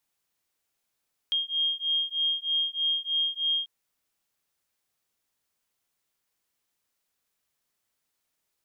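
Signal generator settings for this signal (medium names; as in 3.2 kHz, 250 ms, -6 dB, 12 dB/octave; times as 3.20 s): beating tones 3.23 kHz, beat 3.2 Hz, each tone -28 dBFS 2.34 s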